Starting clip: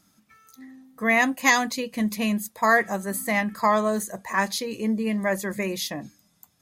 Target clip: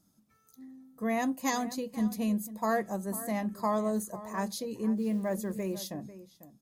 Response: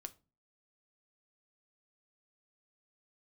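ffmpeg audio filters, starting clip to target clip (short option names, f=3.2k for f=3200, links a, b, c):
-filter_complex "[0:a]equalizer=f=2.1k:w=0.7:g=-14.5,asettb=1/sr,asplit=3[a][b][c];[a]atrim=end=4.974[d];[b]atrim=start=4.97:end=5.87,asetpts=PTS-STARTPTS,afade=t=in:d=0.004:c=qsin,afade=t=out:st=0.896:d=0.004:c=qsin,acrusher=bits=8:mode=log:mix=0:aa=0.000001[e];[c]atrim=start=5.866[f];[d][e]acrossfade=d=0.004:c1=hsin:c2=qsin[g];[g][f]acrossfade=d=0.004:c1=qsin:c2=hsin,asplit=2[h][i];[i]adelay=495.6,volume=-15dB,highshelf=f=4k:g=-11.2[j];[h][j]amix=inputs=2:normalize=0,asplit=2[k][l];[1:a]atrim=start_sample=2205,lowpass=5.6k[m];[l][m]afir=irnorm=-1:irlink=0,volume=-6.5dB[n];[k][n]amix=inputs=2:normalize=0,volume=-6dB"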